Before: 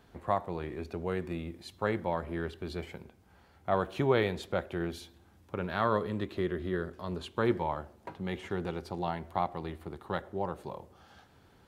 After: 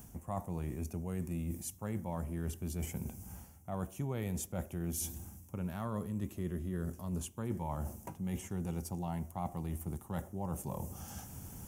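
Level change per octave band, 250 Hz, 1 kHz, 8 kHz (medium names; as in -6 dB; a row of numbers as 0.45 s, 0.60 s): -3.0 dB, -10.5 dB, no reading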